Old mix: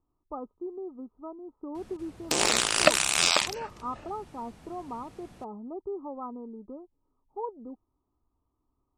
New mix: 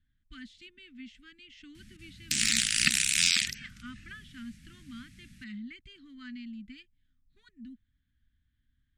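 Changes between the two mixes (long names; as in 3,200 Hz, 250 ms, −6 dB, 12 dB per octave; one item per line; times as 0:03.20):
speech: remove Chebyshev low-pass with heavy ripple 1,300 Hz, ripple 6 dB
master: add elliptic band-stop filter 230–1,800 Hz, stop band 50 dB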